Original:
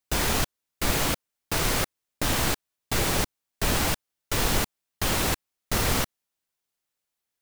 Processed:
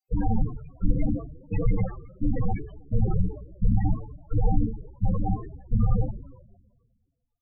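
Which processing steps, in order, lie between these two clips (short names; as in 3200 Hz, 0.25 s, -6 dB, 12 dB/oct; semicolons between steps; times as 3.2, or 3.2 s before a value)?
two-slope reverb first 0.46 s, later 1.6 s, from -17 dB, DRR -5 dB; loudest bins only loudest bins 8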